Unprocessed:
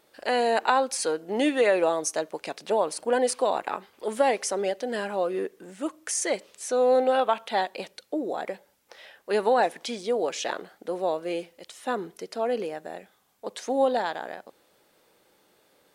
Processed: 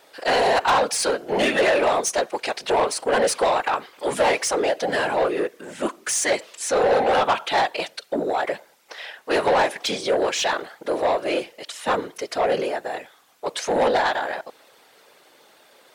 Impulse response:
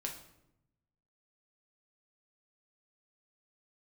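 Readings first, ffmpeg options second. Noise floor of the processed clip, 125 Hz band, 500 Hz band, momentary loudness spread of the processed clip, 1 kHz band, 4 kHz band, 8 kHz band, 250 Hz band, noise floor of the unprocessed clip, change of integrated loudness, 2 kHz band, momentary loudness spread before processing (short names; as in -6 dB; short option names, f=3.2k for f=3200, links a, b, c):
-55 dBFS, n/a, +3.5 dB, 11 LU, +5.5 dB, +8.5 dB, +6.0 dB, +2.0 dB, -65 dBFS, +4.5 dB, +8.0 dB, 15 LU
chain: -filter_complex "[0:a]afftfilt=real='hypot(re,im)*cos(2*PI*random(0))':imag='hypot(re,im)*sin(2*PI*random(1))':win_size=512:overlap=0.75,asplit=2[a][b];[b]highpass=f=720:p=1,volume=21dB,asoftclip=type=tanh:threshold=-14dB[c];[a][c]amix=inputs=2:normalize=0,lowpass=f=5.8k:p=1,volume=-6dB,volume=3.5dB"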